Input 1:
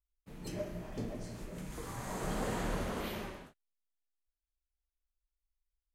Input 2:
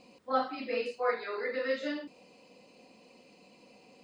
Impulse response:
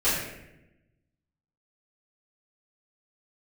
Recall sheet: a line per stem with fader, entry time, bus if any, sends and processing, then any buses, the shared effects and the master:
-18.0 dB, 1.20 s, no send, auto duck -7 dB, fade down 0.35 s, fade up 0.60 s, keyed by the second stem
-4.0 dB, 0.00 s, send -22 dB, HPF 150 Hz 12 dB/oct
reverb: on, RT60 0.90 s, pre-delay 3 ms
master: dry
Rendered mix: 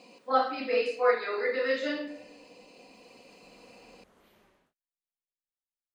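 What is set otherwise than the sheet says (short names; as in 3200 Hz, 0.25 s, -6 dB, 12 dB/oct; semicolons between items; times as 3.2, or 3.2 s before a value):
stem 2 -4.0 dB -> +4.0 dB; master: extra low shelf 200 Hz -8 dB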